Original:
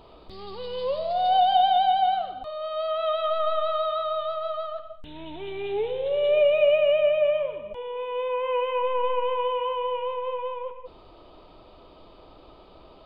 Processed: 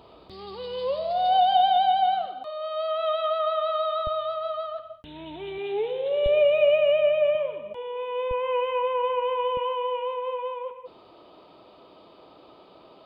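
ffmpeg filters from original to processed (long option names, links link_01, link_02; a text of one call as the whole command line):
ffmpeg -i in.wav -af "asetnsamples=nb_out_samples=441:pad=0,asendcmd='2.26 highpass f 240;4.07 highpass f 64;5.58 highpass f 180;6.26 highpass f 44;7.35 highpass f 120;8.31 highpass f 50;9.57 highpass f 160',highpass=74" out.wav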